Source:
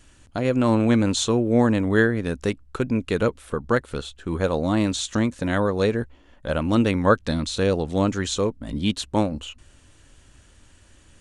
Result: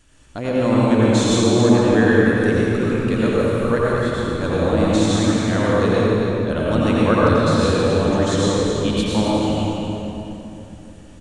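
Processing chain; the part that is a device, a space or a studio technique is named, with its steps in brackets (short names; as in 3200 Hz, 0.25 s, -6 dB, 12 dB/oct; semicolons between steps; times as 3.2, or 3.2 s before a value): cave (echo 0.273 s -9 dB; reverb RT60 3.3 s, pre-delay 81 ms, DRR -6.5 dB); gain -3 dB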